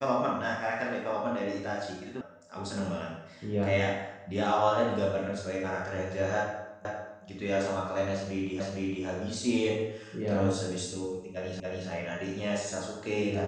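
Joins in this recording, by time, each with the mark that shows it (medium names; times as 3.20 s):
2.21 s: sound stops dead
6.85 s: repeat of the last 0.4 s
8.60 s: repeat of the last 0.46 s
11.60 s: repeat of the last 0.28 s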